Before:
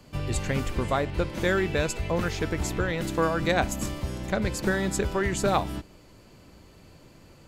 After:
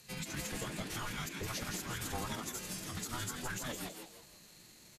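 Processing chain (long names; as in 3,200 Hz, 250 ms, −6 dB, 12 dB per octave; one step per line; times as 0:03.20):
stylus tracing distortion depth 0.051 ms
first-order pre-emphasis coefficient 0.9
mains-hum notches 60/120/180/240 Hz
downward compressor 5 to 1, threshold −41 dBFS, peak gain reduction 13.5 dB
brickwall limiter −34 dBFS, peak gain reduction 8.5 dB
tempo change 1.5×
frequency shifter −360 Hz
phase-vocoder pitch shift with formants kept −8 semitones
echo with shifted repeats 165 ms, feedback 36%, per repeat +140 Hz, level −5.5 dB
level +7.5 dB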